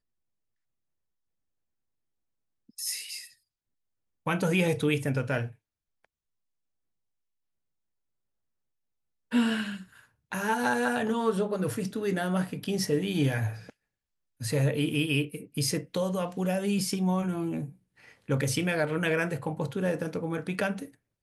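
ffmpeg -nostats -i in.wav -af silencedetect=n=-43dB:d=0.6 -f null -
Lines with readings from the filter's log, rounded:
silence_start: 0.00
silence_end: 2.78 | silence_duration: 2.78
silence_start: 3.27
silence_end: 4.26 | silence_duration: 0.99
silence_start: 5.52
silence_end: 9.32 | silence_duration: 3.80
silence_start: 13.70
silence_end: 14.41 | silence_duration: 0.71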